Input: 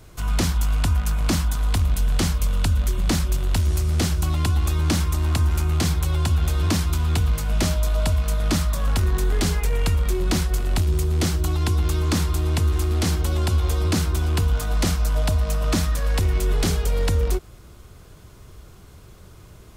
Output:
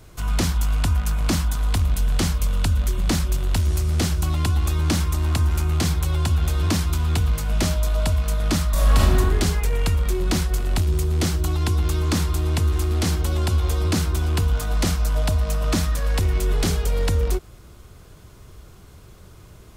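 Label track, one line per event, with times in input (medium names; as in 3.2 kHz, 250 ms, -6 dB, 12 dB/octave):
8.710000	9.180000	reverb throw, RT60 1.1 s, DRR -5 dB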